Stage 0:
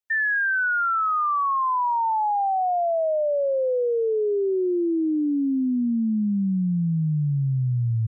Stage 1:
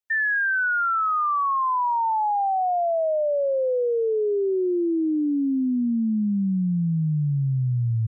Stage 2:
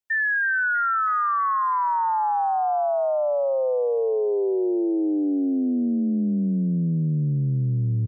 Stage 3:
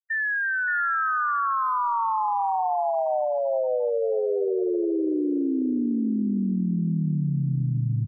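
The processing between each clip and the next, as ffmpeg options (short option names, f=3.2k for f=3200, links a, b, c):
-af anull
-filter_complex "[0:a]asplit=6[a][b][c][d][e][f];[b]adelay=323,afreqshift=59,volume=-16dB[g];[c]adelay=646,afreqshift=118,volume=-21dB[h];[d]adelay=969,afreqshift=177,volume=-26.1dB[i];[e]adelay=1292,afreqshift=236,volume=-31.1dB[j];[f]adelay=1615,afreqshift=295,volume=-36.1dB[k];[a][g][h][i][j][k]amix=inputs=6:normalize=0"
-af "aecho=1:1:574|1148|1722:0.562|0.09|0.0144,afftfilt=real='re*gte(hypot(re,im),0.0891)':imag='im*gte(hypot(re,im),0.0891)':win_size=1024:overlap=0.75,volume=-3dB"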